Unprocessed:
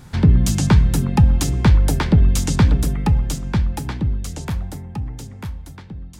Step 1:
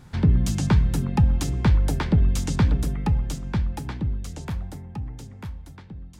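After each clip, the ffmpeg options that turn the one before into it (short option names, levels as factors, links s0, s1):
-af "highshelf=f=5900:g=-5.5,volume=0.531"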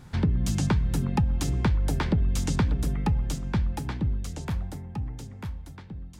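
-af "acompressor=threshold=0.1:ratio=6"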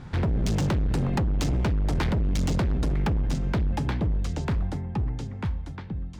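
-af "adynamicsmooth=sensitivity=4:basefreq=4900,volume=26.6,asoftclip=hard,volume=0.0376,volume=2.11"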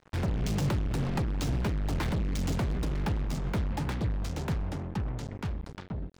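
-af "flanger=delay=4.7:depth=6.5:regen=84:speed=1.8:shape=triangular,acrusher=bits=5:mix=0:aa=0.5"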